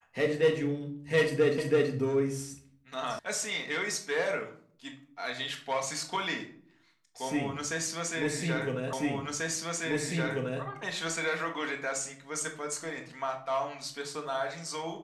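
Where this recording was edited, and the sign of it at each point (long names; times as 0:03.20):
0:01.58: the same again, the last 0.33 s
0:03.19: cut off before it has died away
0:08.93: the same again, the last 1.69 s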